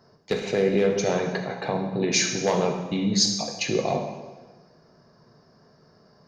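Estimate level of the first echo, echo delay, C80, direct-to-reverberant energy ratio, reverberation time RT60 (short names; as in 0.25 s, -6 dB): none, none, 8.0 dB, 2.5 dB, 1.3 s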